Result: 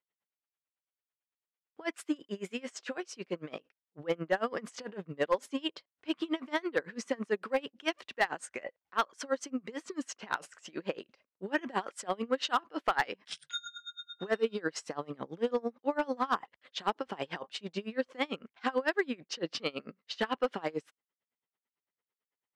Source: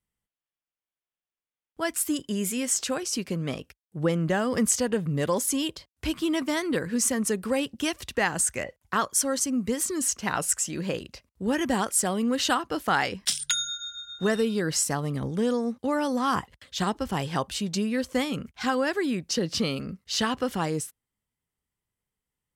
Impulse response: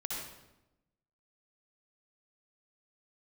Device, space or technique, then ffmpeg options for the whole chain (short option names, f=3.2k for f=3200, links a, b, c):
helicopter radio: -af "highpass=370,lowpass=2.9k,aeval=exprs='val(0)*pow(10,-27*(0.5-0.5*cos(2*PI*9*n/s))/20)':c=same,asoftclip=type=hard:threshold=-22dB,volume=3dB"